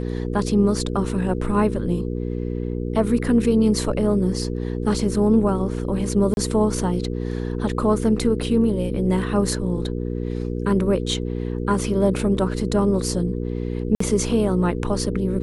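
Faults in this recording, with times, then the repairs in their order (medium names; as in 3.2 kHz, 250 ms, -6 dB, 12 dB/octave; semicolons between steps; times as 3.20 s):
hum 60 Hz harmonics 8 -26 dBFS
6.34–6.37 s: dropout 31 ms
13.95–14.00 s: dropout 54 ms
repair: de-hum 60 Hz, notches 8; interpolate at 6.34 s, 31 ms; interpolate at 13.95 s, 54 ms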